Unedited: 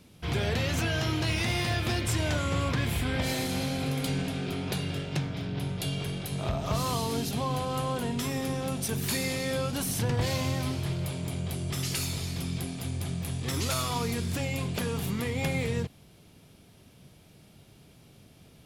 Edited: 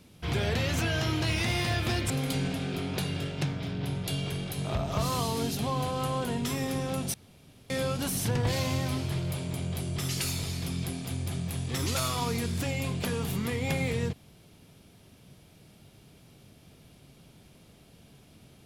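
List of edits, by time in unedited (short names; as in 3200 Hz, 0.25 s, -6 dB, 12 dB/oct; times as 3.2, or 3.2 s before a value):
2.1–3.84 cut
8.88–9.44 room tone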